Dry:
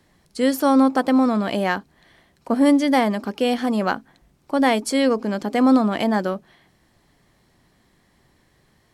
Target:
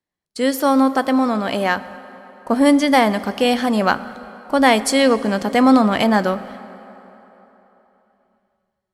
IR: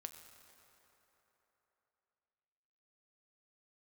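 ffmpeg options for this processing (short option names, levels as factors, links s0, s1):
-filter_complex "[0:a]asubboost=boost=4.5:cutoff=130,dynaudnorm=f=390:g=11:m=2,lowshelf=f=180:g=-8.5,agate=range=0.0398:threshold=0.00447:ratio=16:detection=peak,asplit=2[s0][s1];[1:a]atrim=start_sample=2205[s2];[s1][s2]afir=irnorm=-1:irlink=0,volume=1.41[s3];[s0][s3]amix=inputs=2:normalize=0,volume=0.794"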